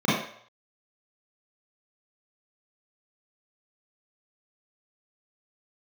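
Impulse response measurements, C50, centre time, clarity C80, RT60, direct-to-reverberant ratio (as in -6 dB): -0.5 dB, 65 ms, 4.5 dB, 0.60 s, -9.5 dB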